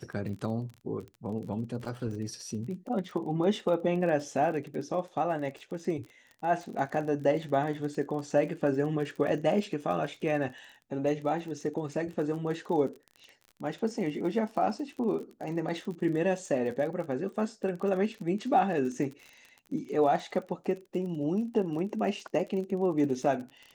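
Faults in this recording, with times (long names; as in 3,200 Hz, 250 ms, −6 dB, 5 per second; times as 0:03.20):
surface crackle 36 per second −38 dBFS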